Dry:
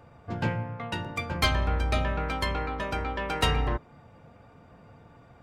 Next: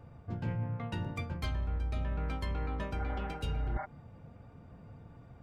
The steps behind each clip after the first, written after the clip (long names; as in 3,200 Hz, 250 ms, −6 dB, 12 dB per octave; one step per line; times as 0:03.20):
healed spectral selection 0:03.01–0:03.82, 550–2,200 Hz before
low-shelf EQ 300 Hz +12 dB
reversed playback
downward compressor 6 to 1, threshold −24 dBFS, peak gain reduction 11.5 dB
reversed playback
level −7.5 dB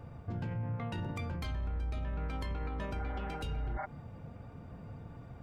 brickwall limiter −34.5 dBFS, peak gain reduction 11 dB
level +4.5 dB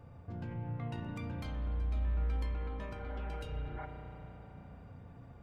convolution reverb RT60 3.9 s, pre-delay 34 ms, DRR 3.5 dB
level −6 dB